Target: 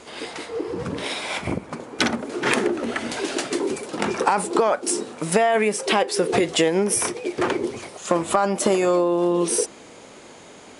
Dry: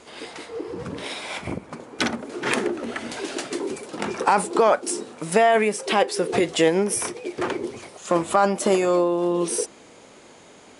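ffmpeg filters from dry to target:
-af "acompressor=threshold=-19dB:ratio=6,volume=4dB"

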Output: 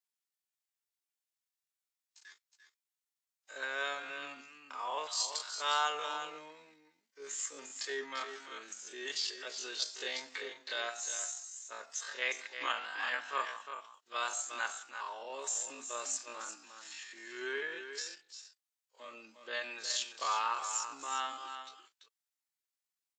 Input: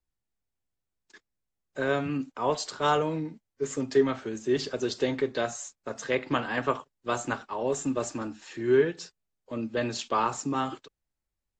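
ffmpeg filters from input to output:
-filter_complex "[0:a]highpass=930,highshelf=f=2.1k:g=9,asplit=2[a][b];[b]aecho=0:1:176:0.355[c];[a][c]amix=inputs=2:normalize=0,atempo=0.5,volume=-7dB"

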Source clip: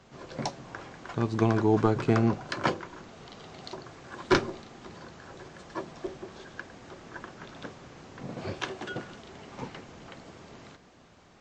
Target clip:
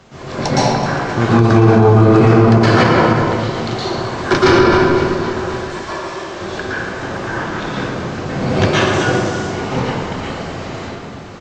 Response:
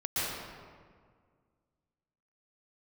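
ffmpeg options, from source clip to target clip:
-filter_complex "[0:a]asettb=1/sr,asplit=3[a][b][c];[a]atrim=end=5.454[d];[b]atrim=start=5.45:end=6.27,asetpts=PTS-STARTPTS,afade=t=in:d=0.004:c=qsin,afade=t=out:st=0.816:d=0.004:c=qsin,highpass=f=1.4k:p=1[e];[c]atrim=start=6.266[f];[d][e]acrossfade=d=0.004:c1=hsin:c2=qsin[g];[g][f]acrossfade=d=0.004:c1=qsin:c2=hsin,asettb=1/sr,asplit=3[h][i][j];[h]atrim=end=8.774[k];[i]atrim=start=8.77:end=9.38,asetpts=PTS-STARTPTS,afade=t=in:d=0.004:c=qsin,afade=t=out:st=0.606:d=0.004:c=qsin,highshelf=f=4.7k:t=q:w=1.5:g=6.5[l];[j]atrim=start=9.376[m];[k][l]acrossfade=d=0.004:c1=hsin:c2=qsin[n];[n][m]acrossfade=d=0.004:c1=qsin:c2=hsin,aecho=1:1:261|522|783|1044|1305|1566:0.158|0.0935|0.0552|0.0326|0.0192|0.0113[o];[1:a]atrim=start_sample=2205[p];[o][p]afir=irnorm=-1:irlink=0,alimiter=level_in=14.5dB:limit=-1dB:release=50:level=0:latency=1,volume=-1dB"

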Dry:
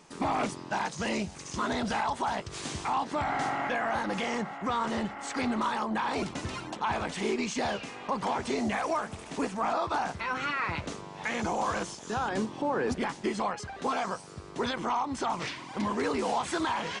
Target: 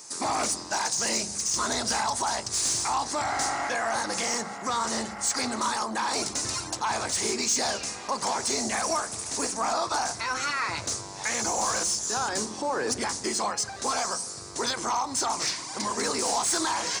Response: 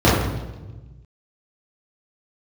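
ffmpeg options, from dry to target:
-filter_complex "[0:a]asplit=2[a][b];[1:a]atrim=start_sample=2205,lowshelf=f=190:g=10.5[c];[b][c]afir=irnorm=-1:irlink=0,volume=-42dB[d];[a][d]amix=inputs=2:normalize=0,aexciter=amount=8.5:drive=7.1:freq=4.6k,asplit=2[e][f];[f]highpass=f=720:p=1,volume=14dB,asoftclip=type=tanh:threshold=-7dB[g];[e][g]amix=inputs=2:normalize=0,lowpass=f=4k:p=1,volume=-6dB,volume=-5dB"

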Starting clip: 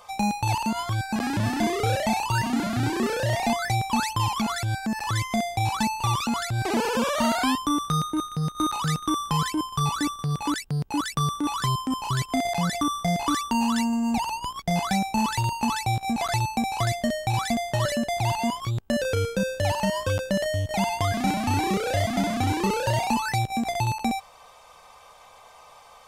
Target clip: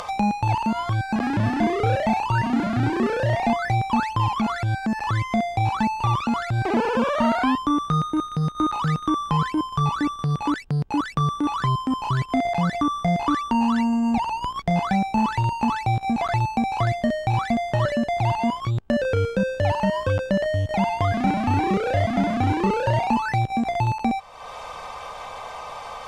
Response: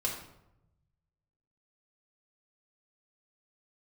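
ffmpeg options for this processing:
-filter_complex "[0:a]acrossover=split=2800[a][b];[b]acompressor=threshold=-40dB:ratio=4:attack=1:release=60[c];[a][c]amix=inputs=2:normalize=0,aemphasis=mode=reproduction:type=50fm,acompressor=mode=upward:threshold=-26dB:ratio=2.5,volume=3dB"

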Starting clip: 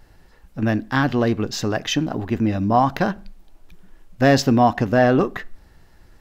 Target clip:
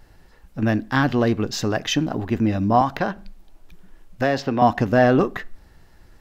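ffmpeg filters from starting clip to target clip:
-filter_complex "[0:a]asettb=1/sr,asplit=3[a][b][c];[a]atrim=end=2.814[d];[b]atrim=start=2.81:end=4.62,asetpts=PTS-STARTPTS,afade=t=in:d=0.004:c=qsin,afade=t=out:st=1.806:d=0.004:c=qsin,acrossover=split=390|1300|4300[e][f][g][h];[e]acompressor=threshold=-27dB:ratio=4[i];[f]acompressor=threshold=-19dB:ratio=4[j];[g]acompressor=threshold=-29dB:ratio=4[k];[h]acompressor=threshold=-49dB:ratio=4[l];[i][j][k][l]amix=inputs=4:normalize=0[m];[c]atrim=start=4.616[n];[d][m]acrossfade=d=0.004:c1=hsin:c2=qsin[o];[o][n]acrossfade=d=0.004:c1=qsin:c2=hsin"

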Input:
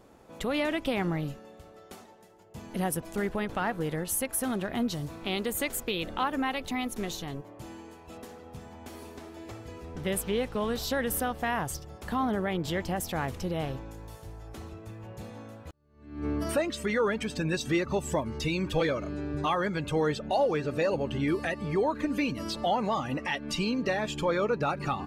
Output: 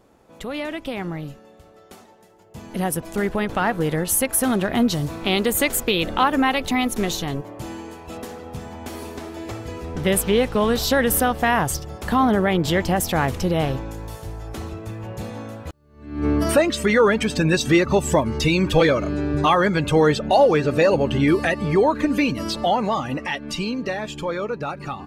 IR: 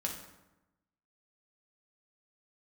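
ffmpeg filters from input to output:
-af "dynaudnorm=f=470:g=13:m=11dB"

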